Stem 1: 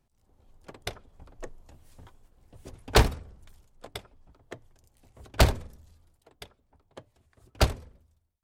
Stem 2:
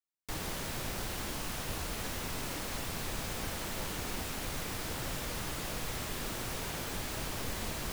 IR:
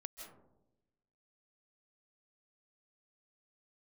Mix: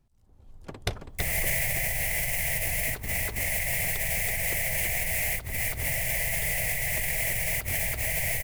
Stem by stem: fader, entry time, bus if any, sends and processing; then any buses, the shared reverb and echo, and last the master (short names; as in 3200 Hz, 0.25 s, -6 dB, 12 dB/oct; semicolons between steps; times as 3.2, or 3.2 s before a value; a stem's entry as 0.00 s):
-5.5 dB, 0.00 s, no send, echo send -5.5 dB, tone controls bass +7 dB, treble 0 dB; AGC gain up to 5 dB
-1.0 dB, 0.90 s, no send, echo send -5.5 dB, EQ curve 150 Hz 0 dB, 280 Hz -25 dB, 660 Hz +3 dB, 1300 Hz -25 dB, 2000 Hz +13 dB, 3700 Hz -10 dB, 11000 Hz +8 dB; AGC gain up to 9.5 dB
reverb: off
echo: echo 0.328 s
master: negative-ratio compressor -29 dBFS, ratio -1